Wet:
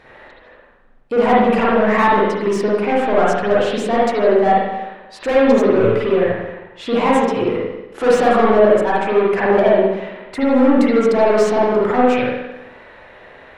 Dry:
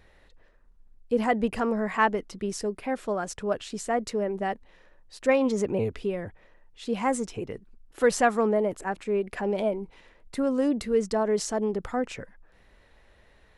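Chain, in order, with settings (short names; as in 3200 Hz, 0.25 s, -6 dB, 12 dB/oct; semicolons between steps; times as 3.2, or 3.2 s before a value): overdrive pedal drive 26 dB, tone 1300 Hz, clips at -9.5 dBFS; spring tank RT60 1 s, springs 44/52 ms, chirp 35 ms, DRR -6.5 dB; gain -2 dB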